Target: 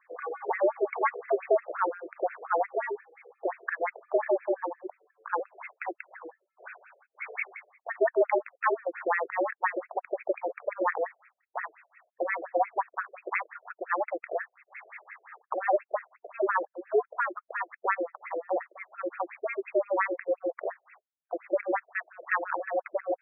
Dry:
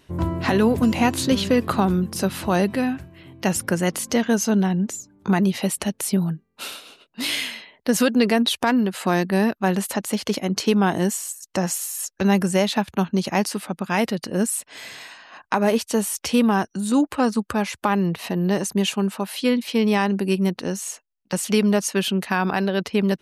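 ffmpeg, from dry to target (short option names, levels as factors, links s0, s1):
-af "aemphasis=mode=production:type=bsi,highpass=f=180:t=q:w=0.5412,highpass=f=180:t=q:w=1.307,lowpass=f=2500:t=q:w=0.5176,lowpass=f=2500:t=q:w=0.7071,lowpass=f=2500:t=q:w=1.932,afreqshift=150,afftfilt=real='re*between(b*sr/1024,470*pow(1900/470,0.5+0.5*sin(2*PI*5.7*pts/sr))/1.41,470*pow(1900/470,0.5+0.5*sin(2*PI*5.7*pts/sr))*1.41)':imag='im*between(b*sr/1024,470*pow(1900/470,0.5+0.5*sin(2*PI*5.7*pts/sr))/1.41,470*pow(1900/470,0.5+0.5*sin(2*PI*5.7*pts/sr))*1.41)':win_size=1024:overlap=0.75"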